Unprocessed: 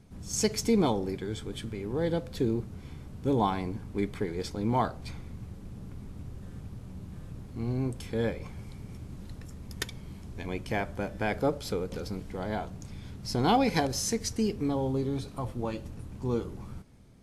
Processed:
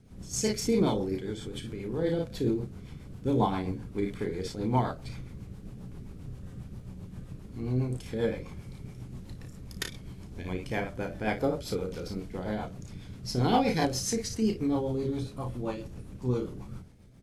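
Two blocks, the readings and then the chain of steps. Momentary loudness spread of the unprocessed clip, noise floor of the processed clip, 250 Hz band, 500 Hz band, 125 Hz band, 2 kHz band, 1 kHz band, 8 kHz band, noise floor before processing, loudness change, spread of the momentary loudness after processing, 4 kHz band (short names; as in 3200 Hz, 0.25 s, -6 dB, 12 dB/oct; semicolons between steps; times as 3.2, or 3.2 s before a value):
17 LU, -47 dBFS, 0.0 dB, 0.0 dB, +0.5 dB, -1.0 dB, -1.5 dB, -1.0 dB, -46 dBFS, 0.0 dB, 17 LU, -1.0 dB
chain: early reflections 32 ms -5.5 dB, 56 ms -7 dB; crackle 180/s -60 dBFS; rotary speaker horn 7.5 Hz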